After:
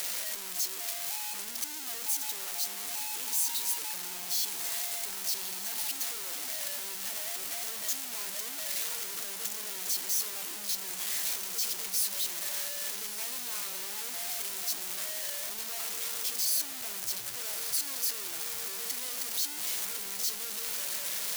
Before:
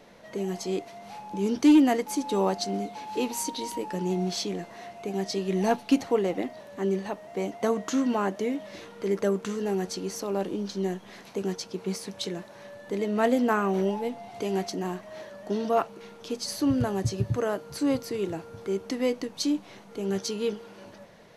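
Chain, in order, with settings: infinite clipping; pre-emphasis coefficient 0.97; diffused feedback echo 1.281 s, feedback 74%, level -10 dB

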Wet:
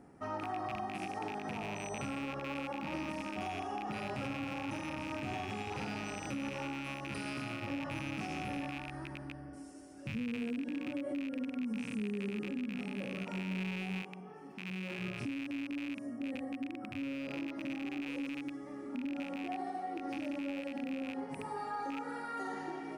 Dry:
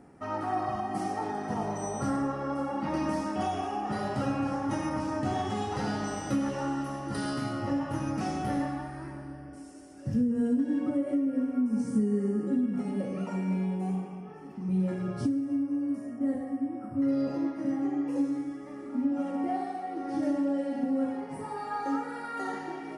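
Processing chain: rattling part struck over -38 dBFS, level -23 dBFS; 14.02–14.99 low shelf 160 Hz -10.5 dB; limiter -27 dBFS, peak gain reduction 10.5 dB; gain -3.5 dB

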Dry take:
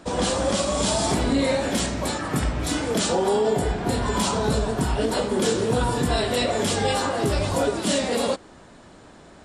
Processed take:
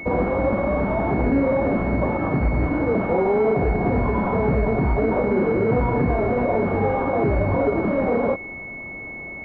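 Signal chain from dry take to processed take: limiter -18.5 dBFS, peak gain reduction 8 dB; pulse-width modulation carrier 2200 Hz; gain +7.5 dB

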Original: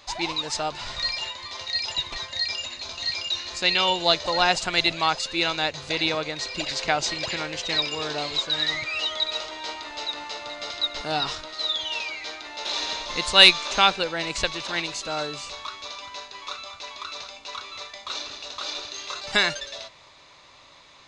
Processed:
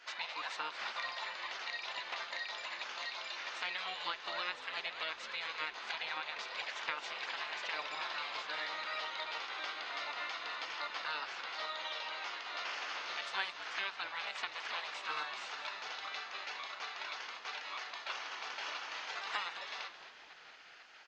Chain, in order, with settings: spectral gate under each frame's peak -10 dB weak; HPF 1100 Hz 12 dB/oct; compressor 6:1, threshold -40 dBFS, peak gain reduction 21 dB; tape spacing loss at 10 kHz 37 dB; frequency-shifting echo 0.219 s, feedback 55%, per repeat -89 Hz, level -13 dB; gain +12.5 dB

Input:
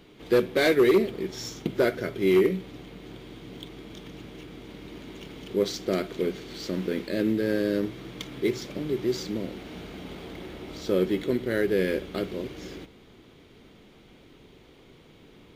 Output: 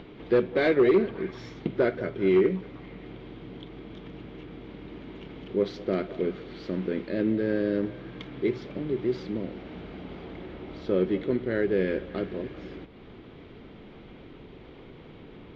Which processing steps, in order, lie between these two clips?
upward compressor, threshold -37 dBFS; air absorption 320 m; on a send: delay with a stepping band-pass 0.197 s, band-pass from 750 Hz, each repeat 0.7 oct, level -12 dB

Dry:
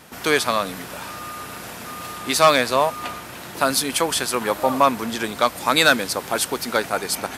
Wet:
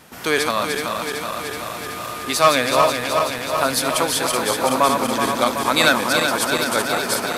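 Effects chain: regenerating reverse delay 0.188 s, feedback 84%, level -5 dB; gain -1 dB

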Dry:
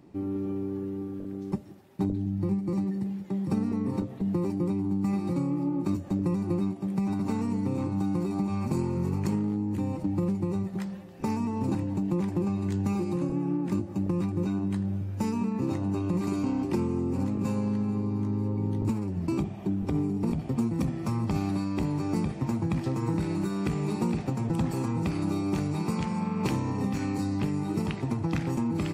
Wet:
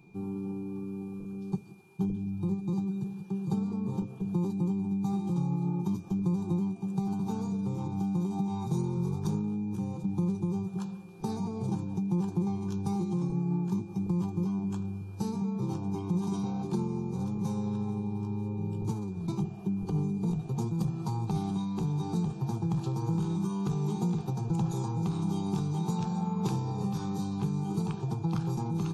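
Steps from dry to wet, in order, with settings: formant shift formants -3 st; whine 2400 Hz -53 dBFS; fixed phaser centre 390 Hz, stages 8

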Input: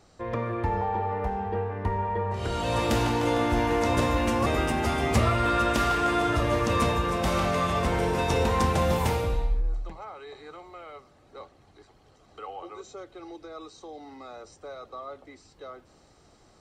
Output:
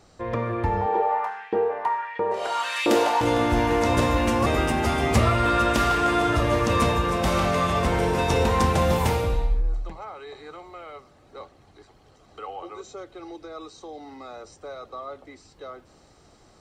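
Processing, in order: 0.86–3.21 LFO high-pass saw up 1.5 Hz 280–2600 Hz; gain +3 dB

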